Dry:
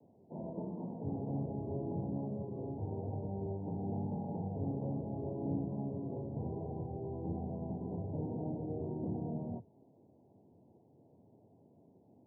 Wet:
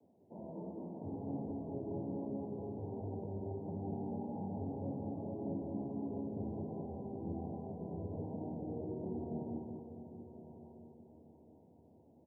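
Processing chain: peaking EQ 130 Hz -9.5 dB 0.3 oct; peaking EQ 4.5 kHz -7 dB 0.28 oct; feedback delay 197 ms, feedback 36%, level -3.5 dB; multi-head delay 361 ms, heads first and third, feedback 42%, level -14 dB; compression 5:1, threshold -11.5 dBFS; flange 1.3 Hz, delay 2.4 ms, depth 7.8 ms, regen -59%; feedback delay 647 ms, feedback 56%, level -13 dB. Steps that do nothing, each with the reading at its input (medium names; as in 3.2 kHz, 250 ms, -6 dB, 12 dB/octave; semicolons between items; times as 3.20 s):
peaking EQ 4.5 kHz: input has nothing above 1 kHz; compression, threshold -11.5 dBFS: peak at its input -23.0 dBFS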